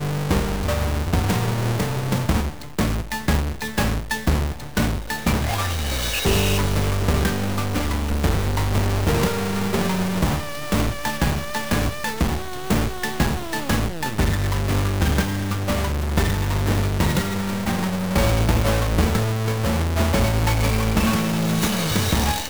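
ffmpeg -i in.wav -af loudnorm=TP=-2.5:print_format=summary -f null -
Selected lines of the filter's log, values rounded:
Input Integrated:    -22.1 LUFS
Input True Peak:     -10.0 dBTP
Input LRA:             3.1 LU
Input Threshold:     -32.1 LUFS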